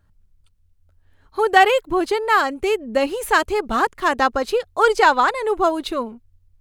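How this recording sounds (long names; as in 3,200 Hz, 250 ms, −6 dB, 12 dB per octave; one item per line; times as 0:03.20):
background noise floor −60 dBFS
spectral slope −0.5 dB per octave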